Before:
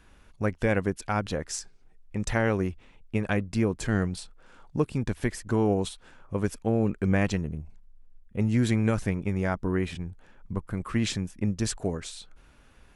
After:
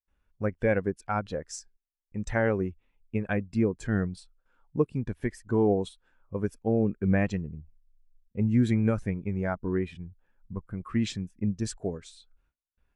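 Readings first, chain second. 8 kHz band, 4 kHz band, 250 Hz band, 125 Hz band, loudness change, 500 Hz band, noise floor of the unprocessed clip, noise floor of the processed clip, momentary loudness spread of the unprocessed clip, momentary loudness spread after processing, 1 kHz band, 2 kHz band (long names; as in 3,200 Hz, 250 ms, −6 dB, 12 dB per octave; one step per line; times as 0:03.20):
can't be measured, −7.0 dB, −0.5 dB, −2.0 dB, −0.5 dB, +0.5 dB, −56 dBFS, −84 dBFS, 12 LU, 16 LU, −2.0 dB, −2.5 dB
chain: noise gate with hold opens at −45 dBFS
low-shelf EQ 390 Hz −5 dB
every bin expanded away from the loudest bin 1.5 to 1
level +2 dB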